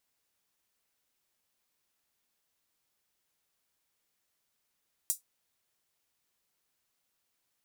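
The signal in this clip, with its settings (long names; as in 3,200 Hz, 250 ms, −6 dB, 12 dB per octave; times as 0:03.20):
closed synth hi-hat, high-pass 7,600 Hz, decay 0.14 s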